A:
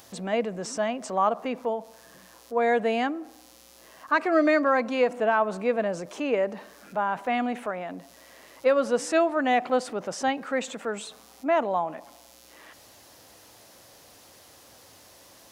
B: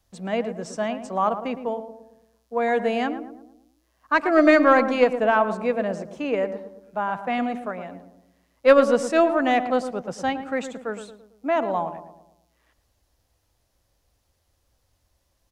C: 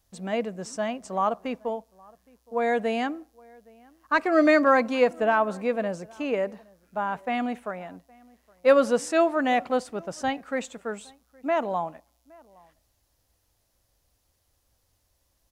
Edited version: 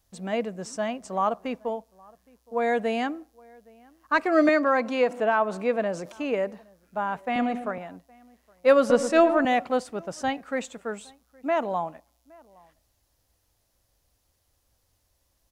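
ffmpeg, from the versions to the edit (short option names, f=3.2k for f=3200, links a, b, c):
-filter_complex "[1:a]asplit=2[a][b];[2:a]asplit=4[c][d][e][f];[c]atrim=end=4.492[g];[0:a]atrim=start=4.488:end=6.122[h];[d]atrim=start=6.118:end=7.362[i];[a]atrim=start=7.358:end=7.782[j];[e]atrim=start=7.778:end=8.902[k];[b]atrim=start=8.898:end=9.452[l];[f]atrim=start=9.448[m];[g][h]acrossfade=d=0.004:c1=hsin:c2=hsin[n];[n][i]acrossfade=d=0.004:c1=hsin:c2=hsin[o];[o][j]acrossfade=d=0.004:c1=hsin:c2=hsin[p];[p][k]acrossfade=d=0.004:c1=hsin:c2=hsin[q];[q][l]acrossfade=d=0.004:c1=hsin:c2=hsin[r];[r][m]acrossfade=d=0.004:c1=hsin:c2=hsin"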